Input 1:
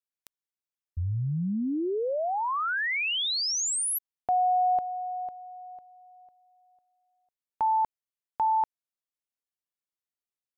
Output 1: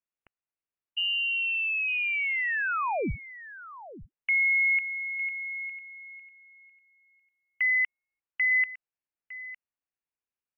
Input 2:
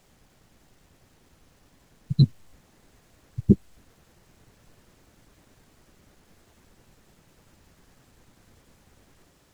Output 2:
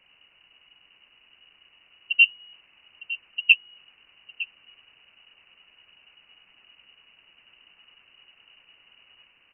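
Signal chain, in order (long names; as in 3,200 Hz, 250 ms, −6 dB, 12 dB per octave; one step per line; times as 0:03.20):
on a send: single-tap delay 907 ms −16 dB
on the sum: voice inversion scrambler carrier 2,900 Hz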